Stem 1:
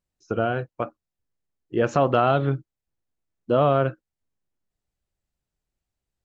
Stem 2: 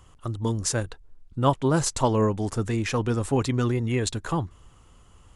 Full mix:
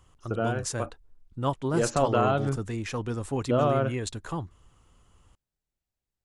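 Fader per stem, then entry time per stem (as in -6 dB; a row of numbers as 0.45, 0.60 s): -5.0, -6.5 dB; 0.00, 0.00 s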